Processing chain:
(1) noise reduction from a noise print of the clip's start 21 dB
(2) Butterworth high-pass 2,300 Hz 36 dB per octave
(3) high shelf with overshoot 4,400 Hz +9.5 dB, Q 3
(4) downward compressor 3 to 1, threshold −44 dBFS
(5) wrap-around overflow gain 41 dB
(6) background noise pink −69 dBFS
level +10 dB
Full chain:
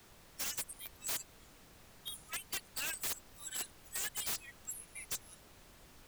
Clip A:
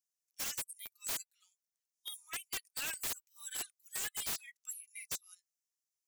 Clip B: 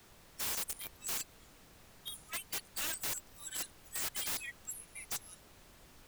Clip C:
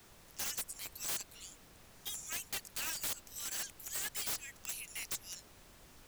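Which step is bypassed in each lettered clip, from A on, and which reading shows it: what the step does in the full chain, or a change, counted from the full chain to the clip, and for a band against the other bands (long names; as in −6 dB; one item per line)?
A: 6, 125 Hz band −4.0 dB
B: 4, average gain reduction 5.5 dB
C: 1, change in momentary loudness spread −7 LU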